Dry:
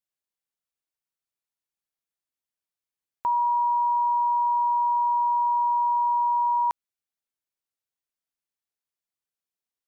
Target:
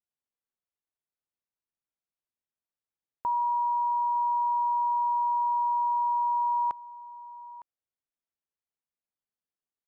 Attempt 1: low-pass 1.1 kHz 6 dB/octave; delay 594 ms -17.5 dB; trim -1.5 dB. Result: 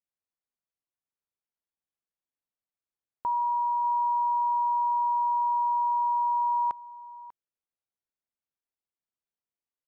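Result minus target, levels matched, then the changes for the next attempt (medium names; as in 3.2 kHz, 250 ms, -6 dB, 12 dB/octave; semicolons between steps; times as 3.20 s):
echo 315 ms early
change: delay 909 ms -17.5 dB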